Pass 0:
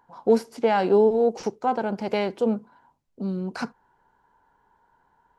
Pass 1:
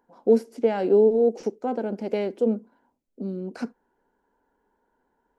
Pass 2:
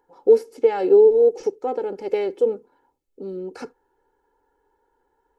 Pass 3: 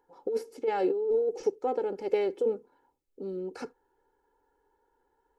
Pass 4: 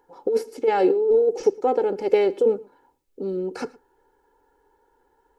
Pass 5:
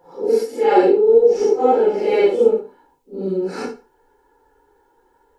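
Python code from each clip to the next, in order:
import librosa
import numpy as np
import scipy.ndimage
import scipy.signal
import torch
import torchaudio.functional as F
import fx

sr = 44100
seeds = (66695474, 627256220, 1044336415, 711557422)

y1 = fx.graphic_eq(x, sr, hz=(125, 250, 500, 1000, 4000), db=(-12, 9, 6, -8, -4))
y1 = F.gain(torch.from_numpy(y1), -5.0).numpy()
y2 = y1 + 0.83 * np.pad(y1, (int(2.3 * sr / 1000.0), 0))[:len(y1)]
y3 = fx.over_compress(y2, sr, threshold_db=-18.0, ratio=-1.0)
y3 = F.gain(torch.from_numpy(y3), -7.5).numpy()
y4 = y3 + 10.0 ** (-23.0 / 20.0) * np.pad(y3, (int(113 * sr / 1000.0), 0))[:len(y3)]
y4 = F.gain(torch.from_numpy(y4), 8.5).numpy()
y5 = fx.phase_scramble(y4, sr, seeds[0], window_ms=200)
y5 = F.gain(torch.from_numpy(y5), 5.5).numpy()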